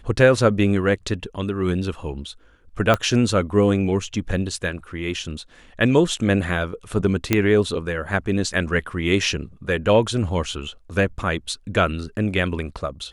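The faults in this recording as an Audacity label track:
2.940000	2.940000	pop -6 dBFS
7.330000	7.330000	pop -3 dBFS

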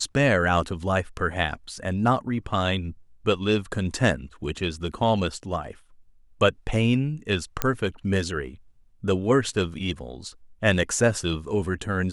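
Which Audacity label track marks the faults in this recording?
7.620000	7.620000	pop -6 dBFS

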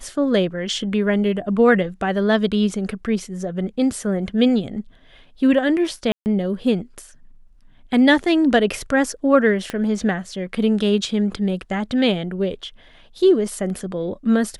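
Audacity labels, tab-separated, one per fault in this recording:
6.120000	6.260000	dropout 139 ms
9.700000	9.700000	pop -12 dBFS

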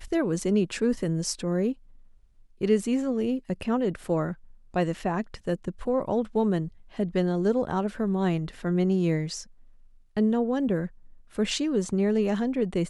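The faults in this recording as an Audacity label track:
4.040000	4.040000	dropout 2.1 ms

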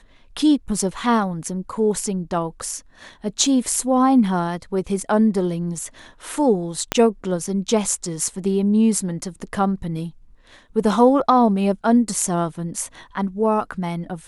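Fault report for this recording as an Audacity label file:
6.920000	6.920000	pop -3 dBFS

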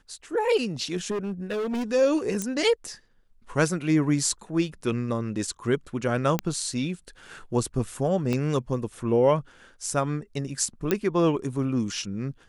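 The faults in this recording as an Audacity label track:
1.100000	1.840000	clipped -25.5 dBFS
2.420000	2.420000	pop -14 dBFS
6.390000	6.390000	pop -10 dBFS
8.330000	8.330000	pop -15 dBFS
10.910000	10.910000	pop -9 dBFS

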